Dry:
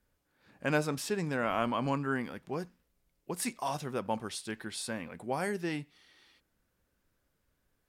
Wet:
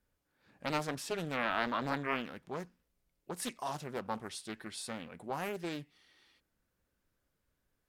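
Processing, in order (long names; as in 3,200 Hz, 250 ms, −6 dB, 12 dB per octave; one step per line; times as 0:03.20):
0:00.85–0:03.60: dynamic equaliser 1,600 Hz, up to +5 dB, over −43 dBFS, Q 0.87
highs frequency-modulated by the lows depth 0.64 ms
level −4 dB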